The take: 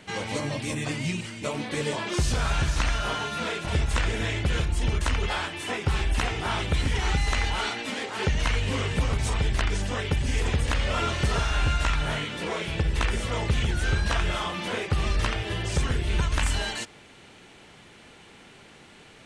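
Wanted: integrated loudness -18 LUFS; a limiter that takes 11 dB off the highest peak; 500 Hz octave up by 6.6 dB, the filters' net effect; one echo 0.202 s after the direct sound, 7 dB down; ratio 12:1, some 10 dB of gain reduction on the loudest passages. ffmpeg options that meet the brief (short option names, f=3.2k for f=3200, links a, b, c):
-af "equalizer=f=500:t=o:g=8,acompressor=threshold=-29dB:ratio=12,alimiter=level_in=6.5dB:limit=-24dB:level=0:latency=1,volume=-6.5dB,aecho=1:1:202:0.447,volume=21dB"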